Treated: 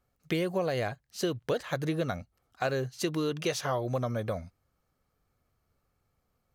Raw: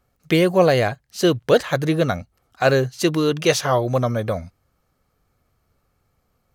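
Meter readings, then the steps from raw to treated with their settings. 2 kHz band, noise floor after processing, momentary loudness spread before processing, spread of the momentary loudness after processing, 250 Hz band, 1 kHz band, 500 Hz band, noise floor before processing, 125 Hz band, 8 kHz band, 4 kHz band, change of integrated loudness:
-12.5 dB, -78 dBFS, 8 LU, 5 LU, -12.0 dB, -12.0 dB, -13.0 dB, -69 dBFS, -11.5 dB, -11.0 dB, -12.0 dB, -12.5 dB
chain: compressor 10:1, threshold -17 dBFS, peak gain reduction 8.5 dB; gain -8.5 dB

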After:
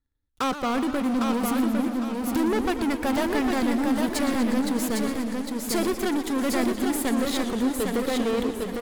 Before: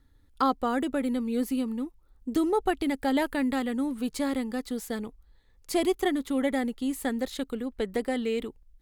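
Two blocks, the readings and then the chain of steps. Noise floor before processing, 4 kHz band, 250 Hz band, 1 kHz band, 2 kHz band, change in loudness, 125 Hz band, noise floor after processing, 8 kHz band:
-60 dBFS, +6.0 dB, +4.5 dB, +3.0 dB, +4.5 dB, +4.0 dB, n/a, -36 dBFS, +9.0 dB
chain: sample leveller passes 5; on a send: feedback echo 0.805 s, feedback 34%, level -4 dB; on the sum: warbling echo 0.119 s, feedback 77%, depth 178 cents, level -12 dB; gain -9 dB

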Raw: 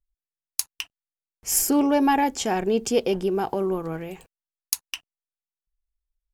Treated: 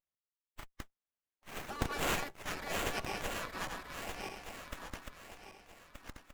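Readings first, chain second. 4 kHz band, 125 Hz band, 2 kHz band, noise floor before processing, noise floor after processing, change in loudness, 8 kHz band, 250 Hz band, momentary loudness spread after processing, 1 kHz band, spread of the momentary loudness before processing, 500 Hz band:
-9.0 dB, -8.5 dB, -4.5 dB, under -85 dBFS, under -85 dBFS, -15.5 dB, -18.0 dB, -22.0 dB, 19 LU, -14.5 dB, 17 LU, -18.5 dB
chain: regenerating reverse delay 0.613 s, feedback 55%, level -3 dB; spectral gate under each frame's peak -20 dB weak; running maximum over 9 samples; gain -2.5 dB

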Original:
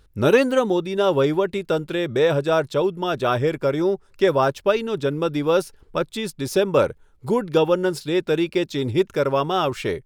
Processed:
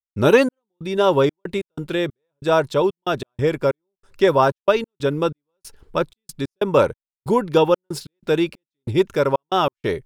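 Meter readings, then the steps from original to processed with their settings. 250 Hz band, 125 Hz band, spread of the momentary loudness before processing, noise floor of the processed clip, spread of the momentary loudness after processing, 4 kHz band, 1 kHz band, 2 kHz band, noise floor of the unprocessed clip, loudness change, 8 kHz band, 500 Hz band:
-0.5 dB, 0.0 dB, 6 LU, under -85 dBFS, 12 LU, -0.5 dB, +2.5 dB, +0.5 dB, -55 dBFS, +1.0 dB, n/a, +0.5 dB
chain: dynamic EQ 960 Hz, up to +5 dB, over -39 dBFS, Q 4.9; step gate ".xx..xxx.x" 93 bpm -60 dB; gain +2 dB

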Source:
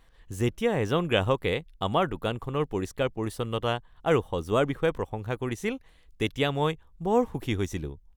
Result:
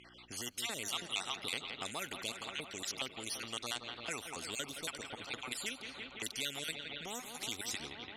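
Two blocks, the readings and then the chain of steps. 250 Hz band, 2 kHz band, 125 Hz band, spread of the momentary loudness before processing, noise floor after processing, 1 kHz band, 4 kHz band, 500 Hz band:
-19.5 dB, -7.0 dB, -25.0 dB, 7 LU, -55 dBFS, -15.0 dB, -1.5 dB, -22.0 dB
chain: random spectral dropouts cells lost 45%; thirty-one-band EQ 250 Hz +10 dB, 500 Hz -6 dB, 1000 Hz -10 dB, 4000 Hz +7 dB; low-pass opened by the level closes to 1700 Hz, open at -23 dBFS; notch 1700 Hz, Q 6.3; on a send: analogue delay 0.169 s, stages 4096, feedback 74%, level -17 dB; on the sum: buzz 60 Hz, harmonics 6, -58 dBFS -6 dB/oct; compressor 3:1, threshold -35 dBFS, peak gain reduction 14 dB; LPF 9200 Hz 12 dB/oct; differentiator; spectral compressor 2:1; gain +11.5 dB

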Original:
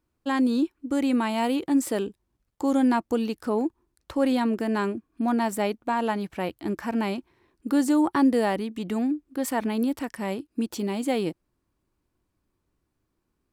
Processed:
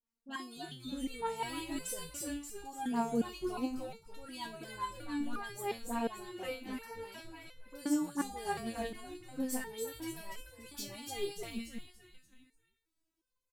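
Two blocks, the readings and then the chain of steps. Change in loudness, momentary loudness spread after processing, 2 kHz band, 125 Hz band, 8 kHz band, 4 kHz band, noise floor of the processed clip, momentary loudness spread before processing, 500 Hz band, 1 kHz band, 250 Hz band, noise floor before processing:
-13.5 dB, 13 LU, -10.0 dB, -12.5 dB, -3.5 dB, -6.5 dB, under -85 dBFS, 9 LU, -13.0 dB, -11.0 dB, -15.0 dB, -78 dBFS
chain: random-step tremolo; high shelf 2400 Hz +10 dB; dispersion highs, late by 47 ms, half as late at 1200 Hz; on a send: frequency-shifting echo 0.289 s, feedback 43%, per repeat -110 Hz, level -4 dB; on the sum: stepped resonator 2.8 Hz 230–510 Hz; gain +2.5 dB

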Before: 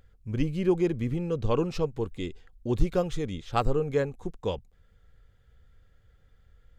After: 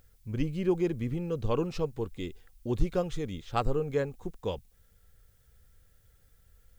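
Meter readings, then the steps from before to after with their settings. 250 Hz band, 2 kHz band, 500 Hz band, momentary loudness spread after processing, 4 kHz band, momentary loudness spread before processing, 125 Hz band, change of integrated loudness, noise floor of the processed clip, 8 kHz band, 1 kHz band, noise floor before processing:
-3.0 dB, -3.0 dB, -3.0 dB, 9 LU, -3.0 dB, 9 LU, -3.0 dB, -3.0 dB, -64 dBFS, -3.0 dB, -3.0 dB, -62 dBFS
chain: added noise blue -68 dBFS; gain -3 dB

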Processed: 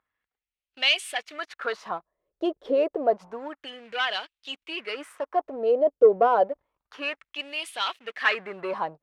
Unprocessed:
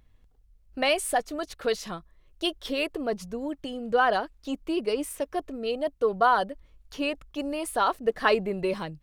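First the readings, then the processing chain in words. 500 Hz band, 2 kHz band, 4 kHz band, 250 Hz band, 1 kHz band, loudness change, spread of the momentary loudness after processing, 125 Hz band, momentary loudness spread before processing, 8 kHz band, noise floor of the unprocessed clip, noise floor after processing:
+3.0 dB, +2.0 dB, +4.5 dB, -5.0 dB, -1.0 dB, +2.0 dB, 15 LU, under -10 dB, 12 LU, n/a, -61 dBFS, under -85 dBFS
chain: sample leveller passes 2; LFO band-pass sine 0.29 Hz 480–3100 Hz; gain +3.5 dB

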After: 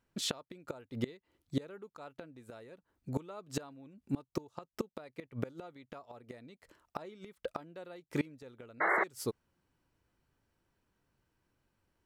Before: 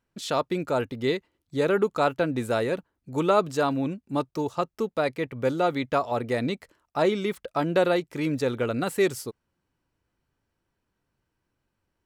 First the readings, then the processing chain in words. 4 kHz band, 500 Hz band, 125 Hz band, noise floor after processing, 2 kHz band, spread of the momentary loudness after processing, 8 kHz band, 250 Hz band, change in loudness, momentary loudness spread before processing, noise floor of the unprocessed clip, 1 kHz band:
-9.0 dB, -18.0 dB, -11.5 dB, under -85 dBFS, -6.5 dB, 17 LU, -5.5 dB, -13.0 dB, -13.0 dB, 7 LU, -80 dBFS, -13.5 dB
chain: flipped gate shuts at -21 dBFS, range -26 dB; painted sound noise, 8.8–9.04, 310–2200 Hz -29 dBFS

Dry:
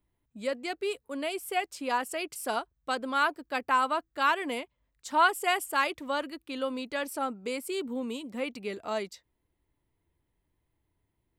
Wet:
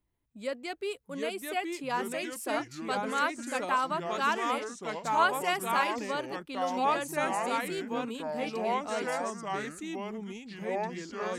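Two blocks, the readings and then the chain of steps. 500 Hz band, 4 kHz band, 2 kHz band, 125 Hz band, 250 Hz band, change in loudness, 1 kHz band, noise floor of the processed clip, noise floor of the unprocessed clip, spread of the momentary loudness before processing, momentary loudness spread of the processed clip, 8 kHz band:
+1.0 dB, -1.5 dB, -1.5 dB, n/a, +1.0 dB, -1.0 dB, 0.0 dB, -54 dBFS, -79 dBFS, 9 LU, 9 LU, +0.5 dB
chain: echoes that change speed 0.664 s, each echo -3 st, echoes 3; gain -3 dB

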